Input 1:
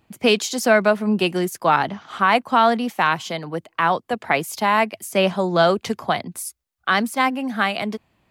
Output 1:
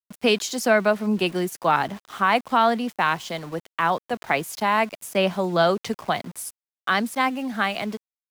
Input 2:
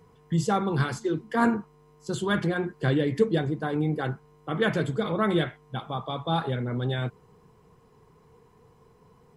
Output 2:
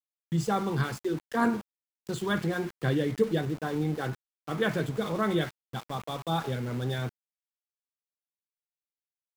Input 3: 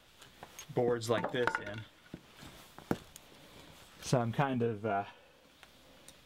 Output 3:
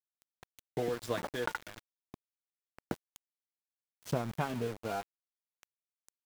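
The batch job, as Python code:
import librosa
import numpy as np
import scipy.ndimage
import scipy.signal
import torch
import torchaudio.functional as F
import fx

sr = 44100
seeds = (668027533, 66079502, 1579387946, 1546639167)

y = np.where(np.abs(x) >= 10.0 ** (-36.5 / 20.0), x, 0.0)
y = F.gain(torch.from_numpy(y), -3.0).numpy()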